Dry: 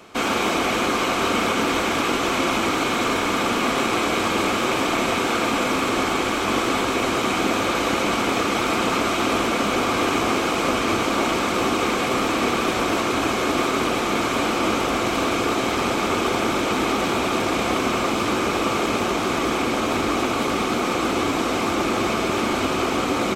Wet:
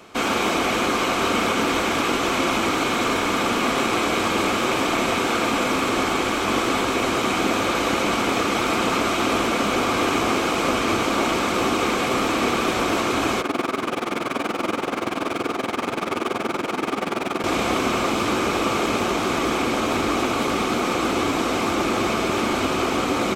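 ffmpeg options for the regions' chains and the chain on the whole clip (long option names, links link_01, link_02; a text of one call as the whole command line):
ffmpeg -i in.wav -filter_complex "[0:a]asettb=1/sr,asplit=3[link_01][link_02][link_03];[link_01]atrim=end=13.414[link_04];[link_02]atrim=start=13.41:end=17.44,asetpts=PTS-STARTPTS,afade=type=in:duration=0.004:curve=qsin,afade=type=out:start_time=4.026:duration=0.004:curve=qsin,highpass=130,lowpass=4200,tremolo=f=21:d=0.788,adynamicsmooth=sensitivity=7:basefreq=660[link_05];[link_03]atrim=start=17.436[link_06];[link_04][link_05]acrossfade=duration=0.004:curve1=hsin:curve2=qsin[link_07];[link_07][link_06]acrossfade=duration=0.004:curve1=qsin:curve2=hsin" out.wav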